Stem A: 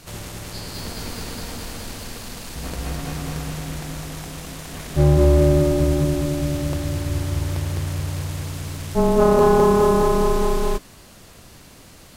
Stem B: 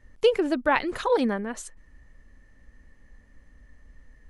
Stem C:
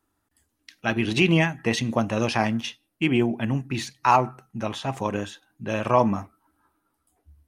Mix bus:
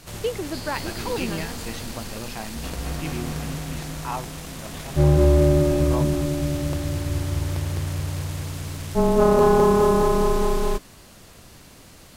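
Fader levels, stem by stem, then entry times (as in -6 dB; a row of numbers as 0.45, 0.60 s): -1.5, -6.5, -12.5 dB; 0.00, 0.00, 0.00 s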